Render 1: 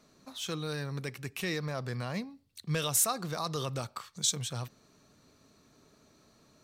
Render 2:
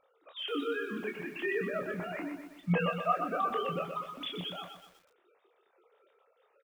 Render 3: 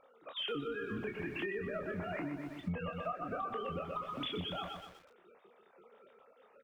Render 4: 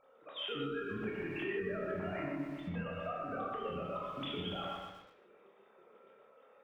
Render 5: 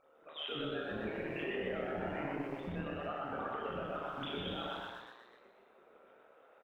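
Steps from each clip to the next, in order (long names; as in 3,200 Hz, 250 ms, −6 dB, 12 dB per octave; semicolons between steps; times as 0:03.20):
three sine waves on the formant tracks; on a send: ambience of single reflections 17 ms −9 dB, 28 ms −5.5 dB, 40 ms −15 dB; on the sum: feedback echo at a low word length 123 ms, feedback 55%, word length 9 bits, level −7 dB; level −2.5 dB
sub-octave generator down 1 octave, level −6 dB; low-pass filter 2,900 Hz 6 dB per octave; downward compressor 12 to 1, threshold −42 dBFS, peak gain reduction 20 dB; level +6.5 dB
convolution reverb, pre-delay 3 ms, DRR −1.5 dB; level −4 dB
amplitude modulation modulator 150 Hz, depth 45%; on a send: echo with shifted repeats 123 ms, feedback 53%, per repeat +120 Hz, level −5.5 dB; on the sum: level +1 dB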